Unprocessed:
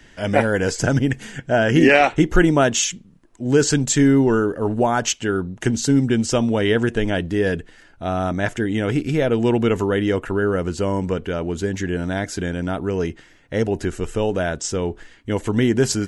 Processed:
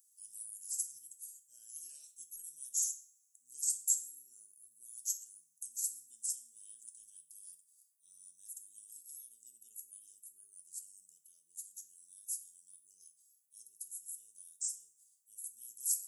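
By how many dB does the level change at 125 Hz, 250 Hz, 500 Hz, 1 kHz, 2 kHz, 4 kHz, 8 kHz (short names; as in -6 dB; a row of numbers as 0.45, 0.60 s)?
under -40 dB, under -40 dB, under -40 dB, under -40 dB, under -40 dB, -28.0 dB, -8.5 dB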